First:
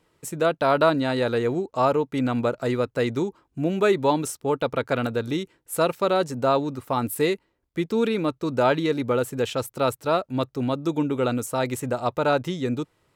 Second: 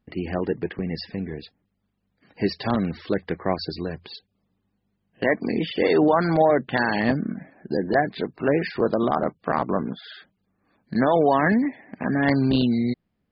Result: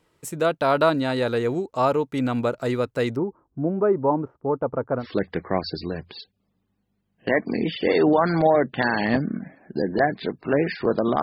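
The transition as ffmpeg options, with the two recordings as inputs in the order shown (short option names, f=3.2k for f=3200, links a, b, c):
-filter_complex "[0:a]asettb=1/sr,asplit=3[a][b][c];[a]atrim=end=3.164[d];[b]atrim=start=3.16:end=5.06,asetpts=PTS-STARTPTS,afade=t=in:d=0.004:c=qsin,afade=t=out:st=1.896:d=0.004:c=qsin,lowpass=f=1.2k:w=0.5412,lowpass=f=1.2k:w=1.3066[e];[c]atrim=start=5.056[f];[d][e]acrossfade=d=0.004:c1=hsin:c2=qsin[g];[g][f]acrossfade=d=0.004:c1=qsin:c2=hsin,apad=whole_dur=11.22,atrim=end=11.22,atrim=end=5.06,asetpts=PTS-STARTPTS[h];[1:a]atrim=start=2.93:end=9.17,asetpts=PTS-STARTPTS[i];[h][i]acrossfade=d=0.08:c1=tri:c2=tri"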